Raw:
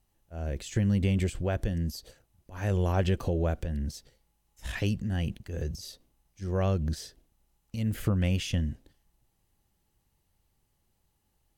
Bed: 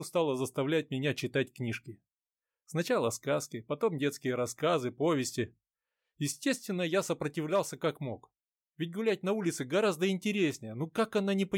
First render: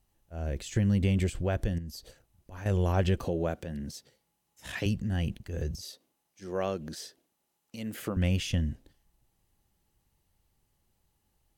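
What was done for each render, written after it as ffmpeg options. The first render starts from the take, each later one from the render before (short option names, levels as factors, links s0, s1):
-filter_complex "[0:a]asettb=1/sr,asplit=3[s0][s1][s2];[s0]atrim=end=1.784[s3];[s1]atrim=start=1.78:end=2.66,asetpts=PTS-STARTPTS,afade=t=in:d=0.004:c=qsin,afade=t=out:st=0.876:d=0.004:c=qsin,acompressor=threshold=0.0112:ratio=3:attack=3.2:release=140:knee=1:detection=peak[s4];[s2]atrim=start=2.656[s5];[s3][s4]acrossfade=d=0.004:c1=hsin:c2=qsin[s6];[s6][s5]acrossfade=d=0.004:c1=qsin:c2=hsin,asettb=1/sr,asplit=3[s7][s8][s9];[s7]atrim=end=3.244[s10];[s8]atrim=start=3.24:end=4.86,asetpts=PTS-STARTPTS,afade=t=in:d=0.004:c=qsin,afade=t=out:st=1.616:d=0.004:c=qsin,highpass=140[s11];[s9]atrim=start=4.856[s12];[s10][s11]acrossfade=d=0.004:c1=hsin:c2=qsin[s13];[s13][s12]acrossfade=d=0.004:c1=qsin:c2=hsin,asettb=1/sr,asplit=3[s14][s15][s16];[s14]atrim=end=5.824[s17];[s15]atrim=start=5.82:end=8.17,asetpts=PTS-STARTPTS,afade=t=in:d=0.004:c=qsin,afade=t=out:st=2.346:d=0.004:c=qsin,highpass=260[s18];[s16]atrim=start=8.166[s19];[s17][s18]acrossfade=d=0.004:c1=hsin:c2=qsin[s20];[s20][s19]acrossfade=d=0.004:c1=qsin:c2=hsin"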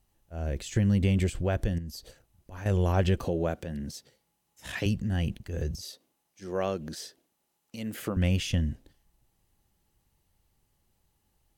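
-af "volume=1.19"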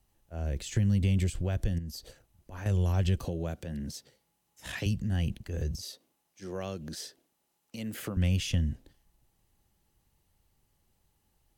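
-filter_complex "[0:a]acrossover=split=180|3000[s0][s1][s2];[s1]acompressor=threshold=0.0112:ratio=2.5[s3];[s0][s3][s2]amix=inputs=3:normalize=0"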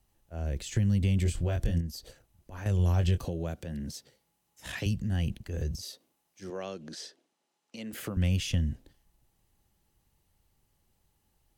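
-filter_complex "[0:a]asettb=1/sr,asplit=3[s0][s1][s2];[s0]atrim=end=1.234[s3];[s1]atrim=start=1.23:end=1.87,asetpts=PTS-STARTPTS,afade=t=in:d=0.004:c=qsin,afade=t=out:st=0.636:d=0.004:c=qsin,asplit=2[s4][s5];[s5]adelay=24,volume=0.668[s6];[s4][s6]amix=inputs=2:normalize=0,atrim=end_sample=28224[s7];[s2]atrim=start=1.866[s8];[s3][s7]acrossfade=d=0.004:c1=hsin:c2=qsin[s9];[s9][s8]acrossfade=d=0.004:c1=qsin:c2=hsin,asettb=1/sr,asplit=3[s10][s11][s12];[s10]atrim=end=2.774[s13];[s11]atrim=start=2.77:end=3.18,asetpts=PTS-STARTPTS,afade=t=in:d=0.004:c=qsin,afade=t=out:st=0.406:d=0.004:c=qsin,asplit=2[s14][s15];[s15]adelay=23,volume=0.335[s16];[s14][s16]amix=inputs=2:normalize=0,atrim=end_sample=18081[s17];[s12]atrim=start=3.176[s18];[s13][s17]acrossfade=d=0.004:c1=hsin:c2=qsin[s19];[s19][s18]acrossfade=d=0.004:c1=qsin:c2=hsin,asettb=1/sr,asplit=3[s20][s21][s22];[s20]atrim=end=6.504[s23];[s21]atrim=start=6.5:end=7.93,asetpts=PTS-STARTPTS,afade=t=in:d=0.004:c=qsin,afade=t=out:st=1.426:d=0.004:c=qsin,highpass=220,lowpass=7000[s24];[s22]atrim=start=7.926[s25];[s23][s24]acrossfade=d=0.004:c1=hsin:c2=qsin[s26];[s26][s25]acrossfade=d=0.004:c1=qsin:c2=hsin"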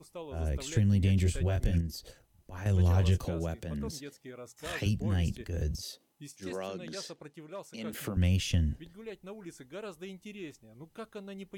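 -filter_complex "[1:a]volume=0.2[s0];[0:a][s0]amix=inputs=2:normalize=0"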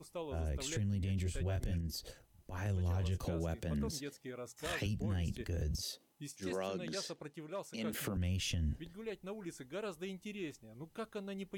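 -af "acompressor=threshold=0.0355:ratio=6,alimiter=level_in=1.68:limit=0.0631:level=0:latency=1:release=82,volume=0.596"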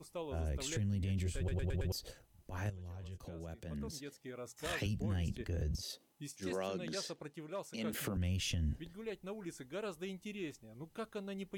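-filter_complex "[0:a]asettb=1/sr,asplit=3[s0][s1][s2];[s0]atrim=end=5.284[s3];[s1]atrim=start=5.28:end=5.9,asetpts=PTS-STARTPTS,afade=t=in:d=0.004:c=qsin,afade=t=out:st=0.616:d=0.004:c=qsin,highshelf=f=4600:g=-6[s4];[s2]atrim=start=5.896[s5];[s3][s4]acrossfade=d=0.004:c1=hsin:c2=qsin[s6];[s6][s5]acrossfade=d=0.004:c1=qsin:c2=hsin,asplit=7[s7][s8][s9][s10][s11][s12][s13];[s7]atrim=end=1.482[s14];[s8]atrim=start=1.368:end=1.482[s15];[s9]atrim=start=1.368:end=1.482[s16];[s10]atrim=start=1.368:end=1.482[s17];[s11]atrim=start=1.368:end=1.482[s18];[s12]atrim=start=1.918:end=2.7,asetpts=PTS-STARTPTS,afade=t=out:st=0.778:d=0.004:c=hsin:silence=0.223872[s19];[s13]atrim=start=2.7,asetpts=PTS-STARTPTS,afade=t=in:d=1.79:c=qua:silence=0.223872[s20];[s14][s15]acrossfade=d=0.004:c1=hsin:c2=hsin[s21];[s21][s16]acrossfade=d=0.004:c1=hsin:c2=hsin[s22];[s22][s17]acrossfade=d=0.004:c1=hsin:c2=hsin[s23];[s23][s18]acrossfade=d=0.004:c1=hsin:c2=hsin[s24];[s19][s20]concat=n=2:v=0:a=1[s25];[s24][s25]acrossfade=d=0.004:c1=hsin:c2=hsin"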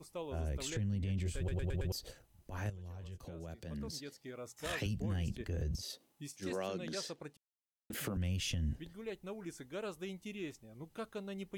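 -filter_complex "[0:a]asettb=1/sr,asplit=3[s0][s1][s2];[s0]atrim=end=0.704[s3];[s1]atrim=start=0.7:end=1.26,asetpts=PTS-STARTPTS,afade=t=in:d=0.004:c=qsin,afade=t=out:st=0.556:d=0.004:c=qsin,highshelf=f=8300:g=-11.5[s4];[s2]atrim=start=1.256[s5];[s3][s4]acrossfade=d=0.004:c1=hsin:c2=qsin[s6];[s6][s5]acrossfade=d=0.004:c1=qsin:c2=hsin,asettb=1/sr,asplit=3[s7][s8][s9];[s7]atrim=end=3.504[s10];[s8]atrim=start=3.5:end=4.36,asetpts=PTS-STARTPTS,afade=t=in:d=0.004:c=qsin,afade=t=out:st=0.856:d=0.004:c=qsin,equalizer=f=4600:w=3.6:g=7.5[s11];[s9]atrim=start=4.356[s12];[s10][s11]acrossfade=d=0.004:c1=hsin:c2=qsin[s13];[s13][s12]acrossfade=d=0.004:c1=qsin:c2=hsin,asplit=3[s14][s15][s16];[s14]atrim=end=7.37,asetpts=PTS-STARTPTS,afade=t=out:st=7.366:d=0.004:c=hsin[s17];[s15]atrim=start=7.37:end=7.9,asetpts=PTS-STARTPTS,volume=0[s18];[s16]atrim=start=7.9,asetpts=PTS-STARTPTS,afade=t=in:d=0.004:c=hsin[s19];[s17][s18][s19]concat=n=3:v=0:a=1"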